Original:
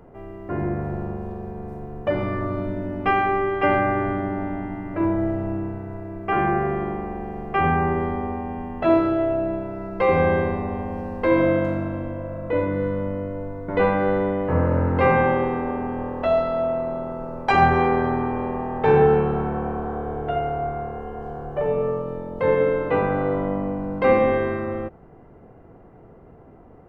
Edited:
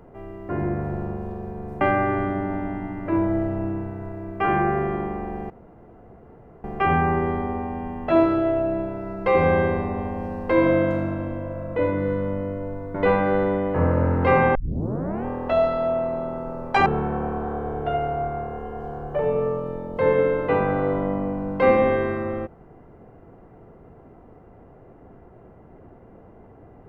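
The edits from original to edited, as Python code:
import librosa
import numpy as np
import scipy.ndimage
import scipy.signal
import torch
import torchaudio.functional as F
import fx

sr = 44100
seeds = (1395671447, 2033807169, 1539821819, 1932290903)

y = fx.edit(x, sr, fx.cut(start_s=1.81, length_s=1.88),
    fx.insert_room_tone(at_s=7.38, length_s=1.14),
    fx.tape_start(start_s=15.29, length_s=0.7),
    fx.cut(start_s=17.6, length_s=1.68), tone=tone)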